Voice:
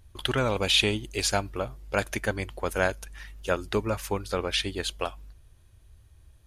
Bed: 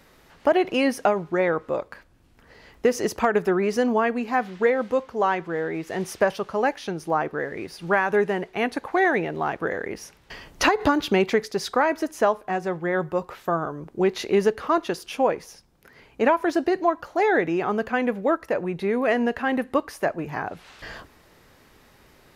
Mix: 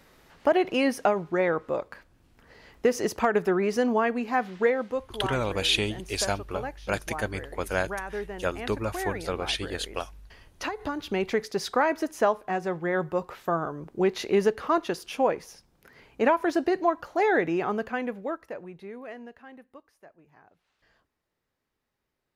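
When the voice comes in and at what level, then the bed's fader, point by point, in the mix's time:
4.95 s, -2.0 dB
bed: 4.66 s -2.5 dB
5.37 s -13 dB
10.82 s -13 dB
11.51 s -2.5 dB
17.61 s -2.5 dB
19.9 s -28 dB

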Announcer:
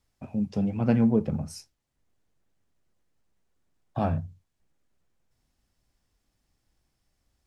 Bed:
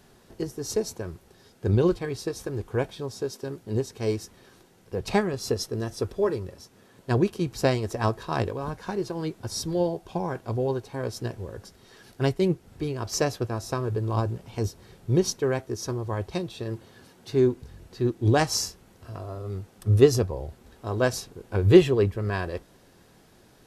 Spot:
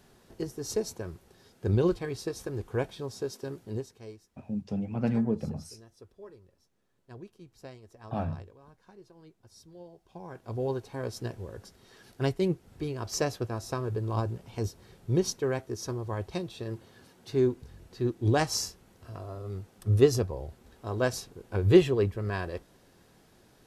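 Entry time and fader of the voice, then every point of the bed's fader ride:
4.15 s, -5.5 dB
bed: 3.64 s -3.5 dB
4.23 s -23.5 dB
9.88 s -23.5 dB
10.65 s -4 dB

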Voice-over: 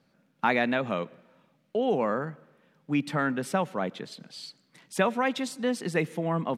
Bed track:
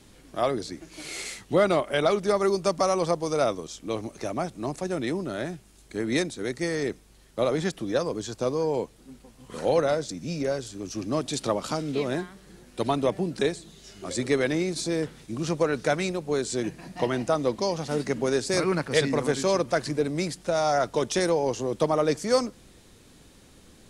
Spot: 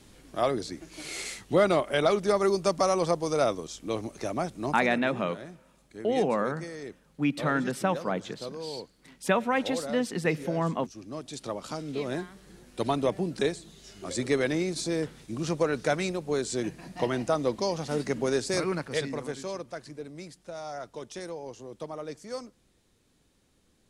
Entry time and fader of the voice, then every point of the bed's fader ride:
4.30 s, 0.0 dB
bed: 4.69 s -1 dB
5.01 s -12 dB
11.04 s -12 dB
12.37 s -2 dB
18.42 s -2 dB
19.79 s -14.5 dB

